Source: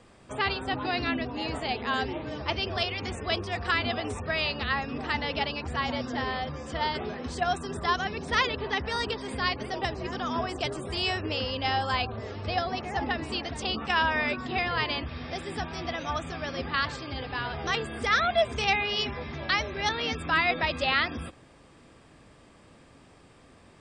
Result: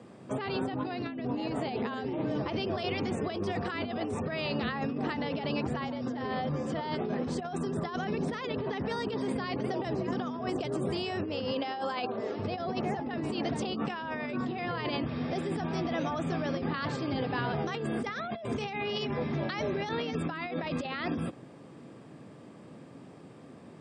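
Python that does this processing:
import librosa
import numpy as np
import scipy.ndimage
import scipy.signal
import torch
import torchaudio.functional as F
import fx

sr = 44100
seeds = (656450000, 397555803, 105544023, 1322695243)

y = fx.highpass(x, sr, hz=290.0, slope=12, at=(11.51, 12.39))
y = scipy.signal.sosfilt(scipy.signal.butter(4, 130.0, 'highpass', fs=sr, output='sos'), y)
y = fx.tilt_shelf(y, sr, db=7.0, hz=770.0)
y = fx.over_compress(y, sr, threshold_db=-33.0, ratio=-1.0)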